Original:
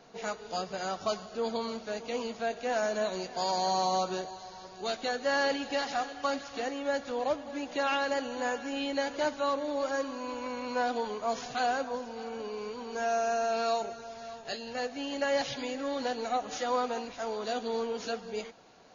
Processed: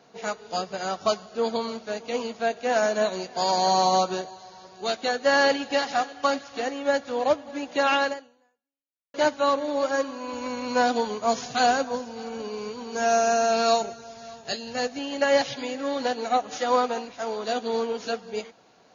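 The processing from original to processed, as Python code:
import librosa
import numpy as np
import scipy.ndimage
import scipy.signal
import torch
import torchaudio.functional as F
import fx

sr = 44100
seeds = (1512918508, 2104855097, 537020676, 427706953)

y = fx.bass_treble(x, sr, bass_db=6, treble_db=6, at=(10.33, 14.99))
y = fx.edit(y, sr, fx.fade_out_span(start_s=8.07, length_s=1.07, curve='exp'), tone=tone)
y = scipy.signal.sosfilt(scipy.signal.butter(2, 76.0, 'highpass', fs=sr, output='sos'), y)
y = fx.upward_expand(y, sr, threshold_db=-43.0, expansion=1.5)
y = F.gain(torch.from_numpy(y), 9.0).numpy()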